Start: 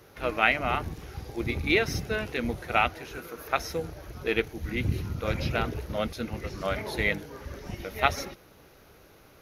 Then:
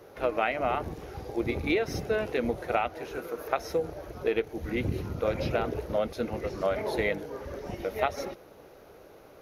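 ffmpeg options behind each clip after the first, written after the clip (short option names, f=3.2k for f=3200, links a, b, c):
-af "equalizer=f=540:t=o:w=2:g=11.5,acompressor=threshold=-19dB:ratio=6,volume=-4dB"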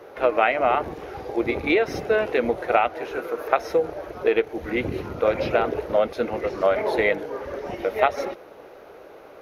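-af "bass=f=250:g=-11,treble=f=4k:g=-10,volume=8.5dB"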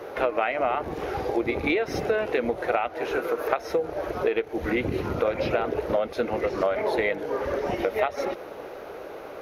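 -af "acompressor=threshold=-29dB:ratio=4,volume=6dB"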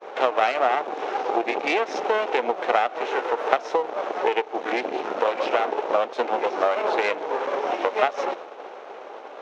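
-af "aeval=exprs='max(val(0),0)':c=same,agate=range=-33dB:threshold=-37dB:ratio=3:detection=peak,highpass=f=310:w=0.5412,highpass=f=310:w=1.3066,equalizer=f=320:t=q:w=4:g=-3,equalizer=f=780:t=q:w=4:g=6,equalizer=f=1.9k:t=q:w=4:g=-3,equalizer=f=4.7k:t=q:w=4:g=-6,lowpass=f=6.2k:w=0.5412,lowpass=f=6.2k:w=1.3066,volume=6.5dB"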